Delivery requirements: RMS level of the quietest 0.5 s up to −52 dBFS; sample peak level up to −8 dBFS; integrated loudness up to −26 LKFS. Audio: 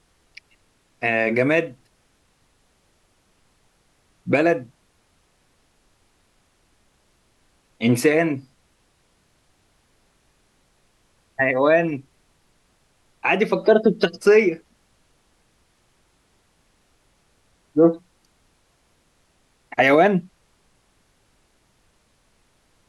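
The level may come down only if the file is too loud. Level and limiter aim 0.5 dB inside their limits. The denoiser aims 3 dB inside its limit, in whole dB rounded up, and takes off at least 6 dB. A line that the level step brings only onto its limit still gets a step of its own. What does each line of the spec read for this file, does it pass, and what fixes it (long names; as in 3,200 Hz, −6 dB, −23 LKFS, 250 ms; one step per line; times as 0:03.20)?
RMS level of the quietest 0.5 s −63 dBFS: in spec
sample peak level −4.5 dBFS: out of spec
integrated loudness −19.5 LKFS: out of spec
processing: level −7 dB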